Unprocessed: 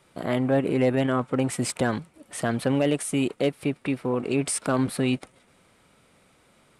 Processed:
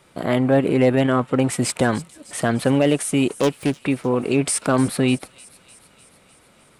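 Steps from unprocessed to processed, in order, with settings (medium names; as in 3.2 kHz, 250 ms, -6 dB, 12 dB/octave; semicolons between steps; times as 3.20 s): 3.38–3.82 s: self-modulated delay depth 0.27 ms; on a send: feedback echo behind a high-pass 302 ms, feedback 64%, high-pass 4.1 kHz, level -15 dB; on the sum: trim +5.5 dB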